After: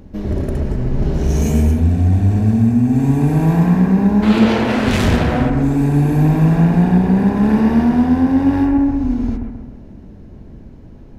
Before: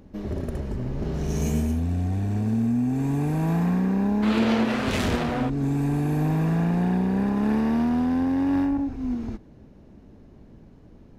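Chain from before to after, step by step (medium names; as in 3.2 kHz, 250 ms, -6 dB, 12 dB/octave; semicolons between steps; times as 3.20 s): bass shelf 120 Hz +6.5 dB; band-stop 1.2 kHz, Q 20; on a send: bucket-brigade echo 132 ms, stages 2048, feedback 50%, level -5 dB; on the sum: trim +6.5 dB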